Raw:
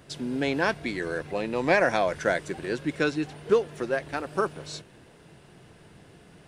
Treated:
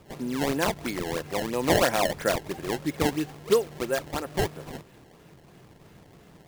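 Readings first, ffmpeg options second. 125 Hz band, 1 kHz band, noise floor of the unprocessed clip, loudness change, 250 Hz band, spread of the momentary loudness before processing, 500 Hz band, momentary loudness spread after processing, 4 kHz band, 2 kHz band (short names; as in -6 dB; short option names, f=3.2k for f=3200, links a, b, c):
+3.0 dB, 0.0 dB, -54 dBFS, 0.0 dB, +0.5 dB, 10 LU, -0.5 dB, 9 LU, +4.5 dB, -4.0 dB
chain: -af "acrusher=samples=21:mix=1:aa=0.000001:lfo=1:lforange=33.6:lforate=3,bandreject=f=1.5k:w=23"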